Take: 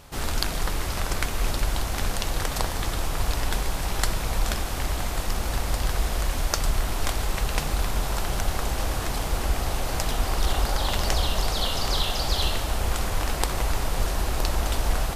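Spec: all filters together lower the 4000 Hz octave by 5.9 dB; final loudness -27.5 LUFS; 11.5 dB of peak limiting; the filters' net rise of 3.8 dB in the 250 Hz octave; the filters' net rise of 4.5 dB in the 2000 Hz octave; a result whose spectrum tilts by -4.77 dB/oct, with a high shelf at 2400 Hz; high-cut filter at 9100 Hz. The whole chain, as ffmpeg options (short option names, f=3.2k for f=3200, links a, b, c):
-af "lowpass=9.1k,equalizer=f=250:t=o:g=5,equalizer=f=2k:t=o:g=9,highshelf=f=2.4k:g=-3,equalizer=f=4k:t=o:g=-8,volume=1dB,alimiter=limit=-14.5dB:level=0:latency=1"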